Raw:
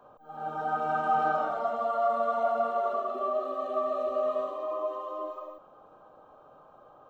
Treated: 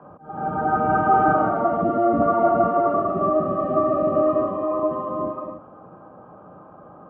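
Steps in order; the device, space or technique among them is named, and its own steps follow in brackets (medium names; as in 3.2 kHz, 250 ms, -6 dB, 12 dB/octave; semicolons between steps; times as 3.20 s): sub-octave bass pedal (octave divider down 1 oct, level +3 dB; cabinet simulation 76–2100 Hz, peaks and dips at 110 Hz +4 dB, 180 Hz +7 dB, 330 Hz +5 dB); 1.81–2.22 s: fifteen-band graphic EQ 100 Hz +5 dB, 250 Hz +10 dB, 1 kHz -11 dB; trim +8.5 dB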